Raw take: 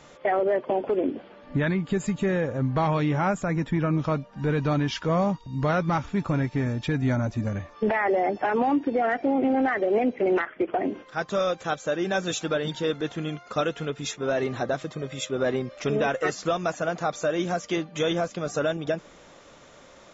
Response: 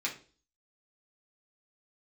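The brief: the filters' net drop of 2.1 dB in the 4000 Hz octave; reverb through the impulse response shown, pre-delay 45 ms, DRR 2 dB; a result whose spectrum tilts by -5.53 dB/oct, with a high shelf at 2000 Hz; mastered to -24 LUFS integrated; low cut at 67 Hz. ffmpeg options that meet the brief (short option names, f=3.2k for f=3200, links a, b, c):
-filter_complex "[0:a]highpass=67,highshelf=f=2k:g=6,equalizer=f=4k:t=o:g=-8.5,asplit=2[a][b];[1:a]atrim=start_sample=2205,adelay=45[c];[b][c]afir=irnorm=-1:irlink=0,volume=-7dB[d];[a][d]amix=inputs=2:normalize=0,volume=1dB"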